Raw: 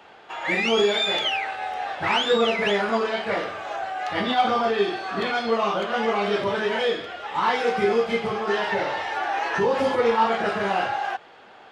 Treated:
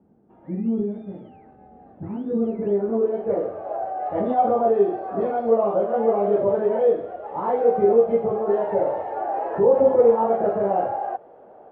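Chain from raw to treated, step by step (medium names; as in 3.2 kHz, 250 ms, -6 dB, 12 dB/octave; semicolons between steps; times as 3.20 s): low-pass sweep 220 Hz -> 590 Hz, 1.92–3.76 s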